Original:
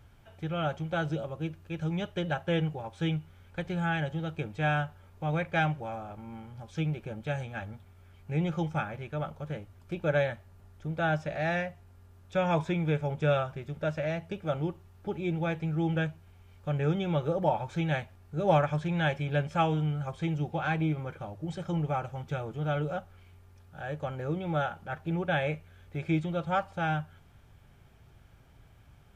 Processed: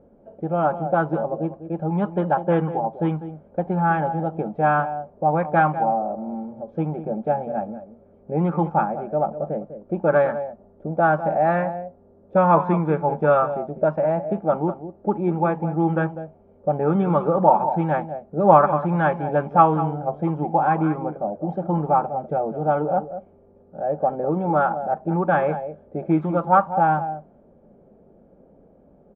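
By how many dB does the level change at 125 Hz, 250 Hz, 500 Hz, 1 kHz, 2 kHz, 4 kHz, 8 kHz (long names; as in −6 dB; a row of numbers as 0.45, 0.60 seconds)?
+4.0 dB, +8.5 dB, +11.0 dB, +14.5 dB, +4.0 dB, below −10 dB, can't be measured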